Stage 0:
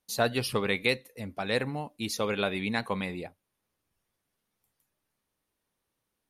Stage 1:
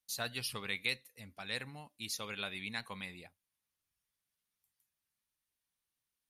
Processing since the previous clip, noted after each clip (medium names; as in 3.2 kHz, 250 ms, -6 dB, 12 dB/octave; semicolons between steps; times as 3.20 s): amplifier tone stack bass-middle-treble 5-5-5; trim +2 dB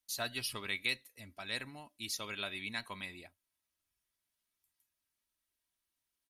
comb 3.1 ms, depth 46%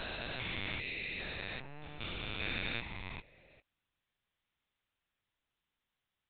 spectrogram pixelated in time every 400 ms; LPC vocoder at 8 kHz pitch kept; pre-echo 183 ms -14 dB; trim +6.5 dB